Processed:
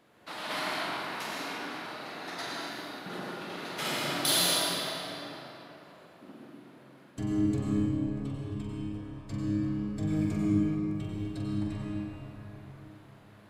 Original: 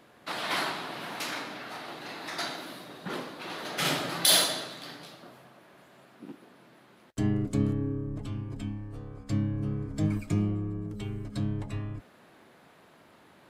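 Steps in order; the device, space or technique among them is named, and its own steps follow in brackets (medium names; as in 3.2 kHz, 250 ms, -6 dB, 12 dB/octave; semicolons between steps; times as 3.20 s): tunnel (flutter echo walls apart 7.7 m, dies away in 0.42 s; reverberation RT60 3.5 s, pre-delay 89 ms, DRR -3.5 dB); trim -7 dB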